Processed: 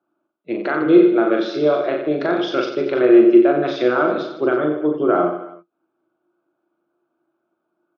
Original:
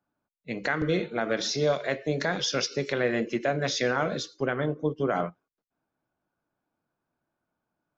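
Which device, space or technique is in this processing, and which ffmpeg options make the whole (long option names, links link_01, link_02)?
kitchen radio: -af "highpass=210,equalizer=frequency=330:width_type=q:width=4:gain=7,equalizer=frequency=630:width_type=q:width=4:gain=6,equalizer=frequency=1300:width_type=q:width=4:gain=9,equalizer=frequency=1900:width_type=q:width=4:gain=-9,lowpass=frequency=3500:width=0.5412,lowpass=frequency=3500:width=1.3066,equalizer=frequency=350:width=7.2:gain=14.5,aecho=1:1:40|90|152.5|230.6|328.3:0.631|0.398|0.251|0.158|0.1,volume=2dB"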